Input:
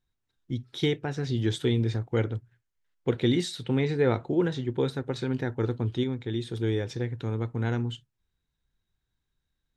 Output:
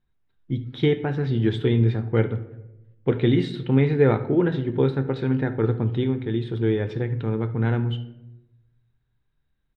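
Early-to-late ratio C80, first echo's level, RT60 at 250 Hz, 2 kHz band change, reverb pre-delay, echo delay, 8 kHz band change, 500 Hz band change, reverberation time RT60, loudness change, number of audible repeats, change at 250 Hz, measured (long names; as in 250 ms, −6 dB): 16.5 dB, −19.0 dB, 1.2 s, +3.5 dB, 5 ms, 73 ms, below −15 dB, +5.5 dB, 0.95 s, +5.5 dB, 1, +5.5 dB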